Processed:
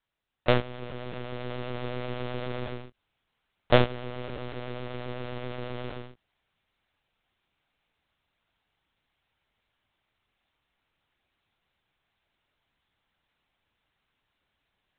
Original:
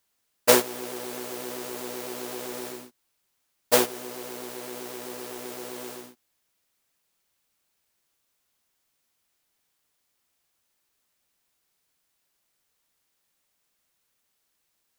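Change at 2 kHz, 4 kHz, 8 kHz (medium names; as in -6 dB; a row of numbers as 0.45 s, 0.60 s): -1.5 dB, -4.5 dB, under -40 dB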